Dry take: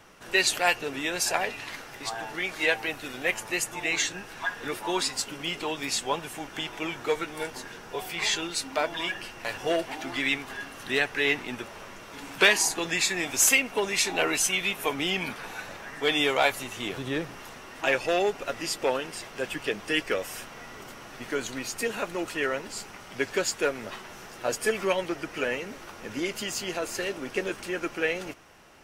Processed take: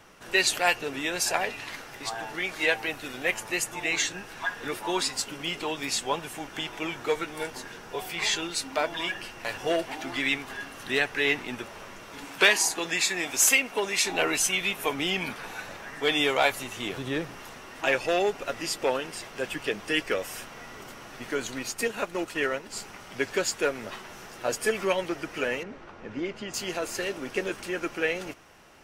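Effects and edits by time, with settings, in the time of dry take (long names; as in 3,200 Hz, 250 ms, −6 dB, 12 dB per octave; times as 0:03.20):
0:12.25–0:14.05: low-shelf EQ 150 Hz −10 dB
0:21.61–0:22.82: transient designer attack +2 dB, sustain −5 dB
0:25.63–0:26.54: head-to-tape spacing loss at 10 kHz 25 dB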